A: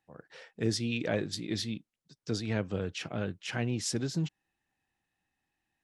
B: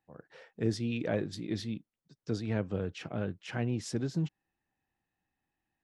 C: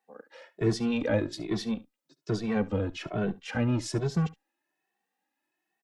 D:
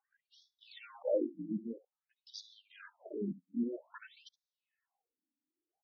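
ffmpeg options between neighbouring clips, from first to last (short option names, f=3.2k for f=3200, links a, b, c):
-af "highshelf=f=2.2k:g=-10"
-filter_complex "[0:a]acrossover=split=240[a][b];[a]acrusher=bits=5:mix=0:aa=0.5[c];[c][b]amix=inputs=2:normalize=0,aecho=1:1:70:0.106,asplit=2[d][e];[e]adelay=2.2,afreqshift=1.2[f];[d][f]amix=inputs=2:normalize=1,volume=7.5dB"
-af "afftfilt=real='re*between(b*sr/1024,220*pow(4800/220,0.5+0.5*sin(2*PI*0.51*pts/sr))/1.41,220*pow(4800/220,0.5+0.5*sin(2*PI*0.51*pts/sr))*1.41)':imag='im*between(b*sr/1024,220*pow(4800/220,0.5+0.5*sin(2*PI*0.51*pts/sr))/1.41,220*pow(4800/220,0.5+0.5*sin(2*PI*0.51*pts/sr))*1.41)':win_size=1024:overlap=0.75,volume=-2.5dB"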